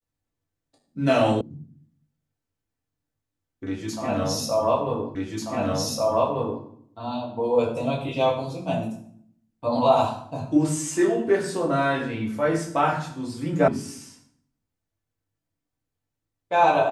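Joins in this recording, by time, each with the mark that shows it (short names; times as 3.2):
1.41 sound cut off
5.15 repeat of the last 1.49 s
13.68 sound cut off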